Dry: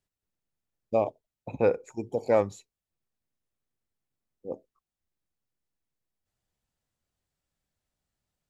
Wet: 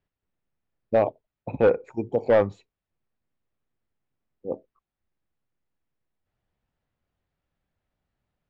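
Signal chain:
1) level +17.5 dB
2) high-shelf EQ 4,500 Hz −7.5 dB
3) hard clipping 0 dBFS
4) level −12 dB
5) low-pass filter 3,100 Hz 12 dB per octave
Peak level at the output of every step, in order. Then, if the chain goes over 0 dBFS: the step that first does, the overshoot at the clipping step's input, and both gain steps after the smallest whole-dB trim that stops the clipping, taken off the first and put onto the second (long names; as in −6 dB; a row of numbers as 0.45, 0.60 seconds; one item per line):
+6.5, +6.5, 0.0, −12.0, −11.5 dBFS
step 1, 6.5 dB
step 1 +10.5 dB, step 4 −5 dB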